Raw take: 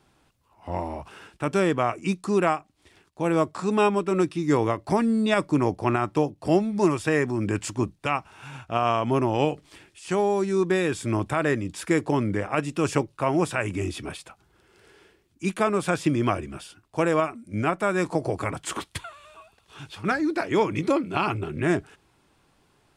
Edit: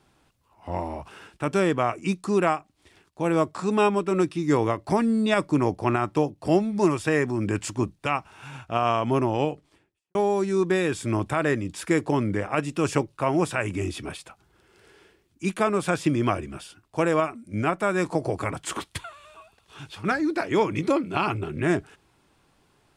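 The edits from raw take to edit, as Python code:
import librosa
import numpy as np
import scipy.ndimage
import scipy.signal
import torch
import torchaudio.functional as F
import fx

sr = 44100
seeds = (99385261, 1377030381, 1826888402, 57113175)

y = fx.studio_fade_out(x, sr, start_s=9.16, length_s=0.99)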